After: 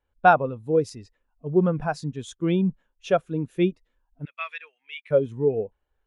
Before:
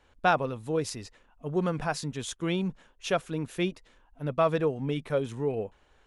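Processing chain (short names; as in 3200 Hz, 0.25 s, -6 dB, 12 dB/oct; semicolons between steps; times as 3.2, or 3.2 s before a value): 4.25–5.11 resonant high-pass 2200 Hz, resonance Q 2.5; spectral expander 1.5:1; gain +7.5 dB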